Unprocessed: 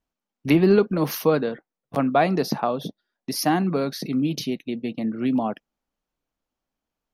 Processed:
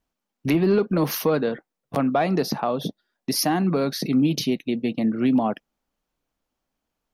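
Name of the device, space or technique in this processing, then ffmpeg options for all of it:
soft clipper into limiter: -af "asoftclip=type=tanh:threshold=-8dB,alimiter=limit=-16.5dB:level=0:latency=1:release=225,volume=4dB"

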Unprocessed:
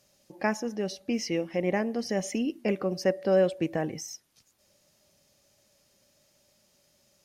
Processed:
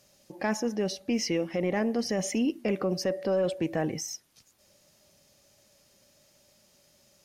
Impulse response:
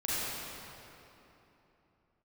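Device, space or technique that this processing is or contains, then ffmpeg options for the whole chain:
soft clipper into limiter: -af "asoftclip=type=tanh:threshold=-15dB,alimiter=limit=-23dB:level=0:latency=1:release=26,volume=3.5dB"

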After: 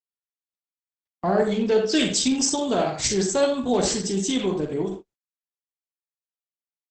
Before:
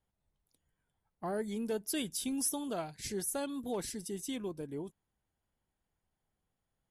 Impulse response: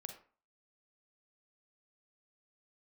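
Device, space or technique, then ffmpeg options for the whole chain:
speakerphone in a meeting room: -filter_complex "[0:a]asplit=2[a][b];[b]adelay=16,volume=-8dB[c];[a][c]amix=inputs=2:normalize=0,asettb=1/sr,asplit=3[d][e][f];[d]atrim=end=1.484[g];[e]atrim=start=1.48:end=1.95,asetpts=PTS-STARTPTS,afade=t=in:d=0.004:c=qsin,afade=t=out:st=0.466:d=0.004:c=qsin,lowpass=f=5.6k:w=0.5412,lowpass=f=5.6k:w=1.3066[h];[f]atrim=start=1.946[i];[g][h]acrossfade=d=0.004:c1=hsin:c2=qsin[j];[j][i]acrossfade=d=0.004:c1=qsin:c2=hsin,highshelf=f=2.9k:g=5[k];[1:a]atrim=start_sample=2205[l];[k][l]afir=irnorm=-1:irlink=0,asplit=2[m][n];[n]adelay=80,highpass=300,lowpass=3.4k,asoftclip=type=hard:threshold=-31dB,volume=-10dB[o];[m][o]amix=inputs=2:normalize=0,dynaudnorm=f=570:g=3:m=16dB,agate=range=-40dB:threshold=-36dB:ratio=16:detection=peak,volume=2.5dB" -ar 48000 -c:a libopus -b:a 12k

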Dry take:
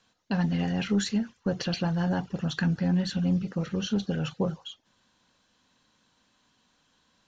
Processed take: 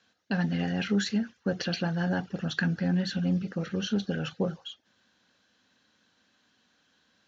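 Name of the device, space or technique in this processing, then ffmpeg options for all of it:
car door speaker: -af "highpass=89,equalizer=f=140:t=q:w=4:g=-7,equalizer=f=1k:t=q:w=4:g=-7,equalizer=f=1.6k:t=q:w=4:g=5,lowpass=f=6.5k:w=0.5412,lowpass=f=6.5k:w=1.3066"

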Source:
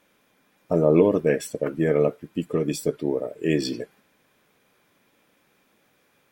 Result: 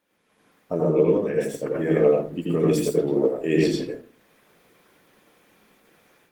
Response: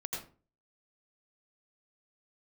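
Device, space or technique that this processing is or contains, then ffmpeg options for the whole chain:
far-field microphone of a smart speaker: -filter_complex "[1:a]atrim=start_sample=2205[a];[0:a][a]afir=irnorm=-1:irlink=0,highpass=f=140:p=1,dynaudnorm=f=240:g=3:m=12.5dB,volume=-6dB" -ar 48000 -c:a libopus -b:a 20k

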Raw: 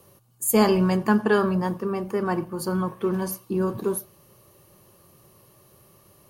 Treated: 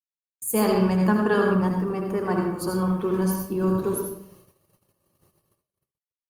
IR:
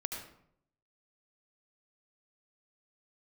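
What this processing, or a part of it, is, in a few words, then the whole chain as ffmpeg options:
speakerphone in a meeting room: -filter_complex "[1:a]atrim=start_sample=2205[a];[0:a][a]afir=irnorm=-1:irlink=0,dynaudnorm=f=130:g=11:m=4dB,agate=range=-60dB:threshold=-47dB:ratio=16:detection=peak,volume=-4dB" -ar 48000 -c:a libopus -b:a 32k

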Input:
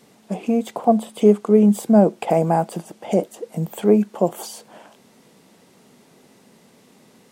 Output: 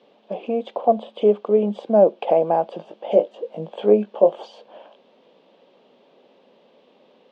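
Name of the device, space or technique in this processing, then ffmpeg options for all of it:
phone earpiece: -filter_complex "[0:a]asettb=1/sr,asplit=3[a][b][c];[a]atrim=end=2.774[d];[b]atrim=start=2.77:end=4.36,asetpts=PTS-STARTPTS,afade=t=in:d=0.004:c=qsin,afade=t=out:st=1.586:d=0.004:c=qsin,asplit=2[e][f];[f]adelay=19,volume=-6dB[g];[e][g]amix=inputs=2:normalize=0,atrim=end_sample=70119[h];[c]atrim=start=4.356[i];[d][h]acrossfade=d=0.004:c1=hsin:c2=qsin[j];[j][i]acrossfade=d=0.004:c1=qsin:c2=hsin,highpass=340,equalizer=f=550:t=q:w=4:g=9,equalizer=f=1.4k:t=q:w=4:g=-6,equalizer=f=2k:t=q:w=4:g=-9,equalizer=f=3.2k:t=q:w=4:g=4,lowpass=f=3.5k:w=0.5412,lowpass=f=3.5k:w=1.3066,volume=-1.5dB"

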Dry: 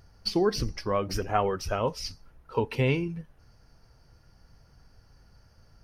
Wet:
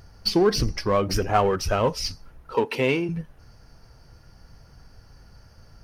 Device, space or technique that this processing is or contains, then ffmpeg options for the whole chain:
parallel distortion: -filter_complex "[0:a]asplit=2[a][b];[b]asoftclip=type=hard:threshold=-29dB,volume=-5dB[c];[a][c]amix=inputs=2:normalize=0,asettb=1/sr,asplit=3[d][e][f];[d]atrim=end=2.554[g];[e]atrim=start=2.55:end=3.09,asetpts=PTS-STARTPTS,afade=t=in:d=0.004:c=qsin,afade=t=out:st=0.536:d=0.004:c=qsin,highpass=240[h];[f]atrim=start=3.086[i];[g][h]acrossfade=d=0.004:c1=hsin:c2=qsin[j];[j][i]acrossfade=d=0.004:c1=qsin:c2=hsin,volume=3.5dB"

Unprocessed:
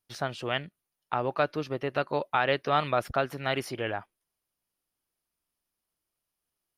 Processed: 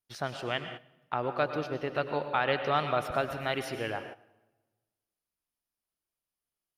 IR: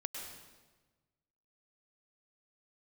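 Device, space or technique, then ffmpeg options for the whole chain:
keyed gated reverb: -filter_complex "[0:a]asplit=3[a][b][c];[1:a]atrim=start_sample=2205[d];[b][d]afir=irnorm=-1:irlink=0[e];[c]apad=whole_len=298880[f];[e][f]sidechaingate=range=-13dB:threshold=-50dB:ratio=16:detection=peak,volume=1.5dB[g];[a][g]amix=inputs=2:normalize=0,volume=-8dB"

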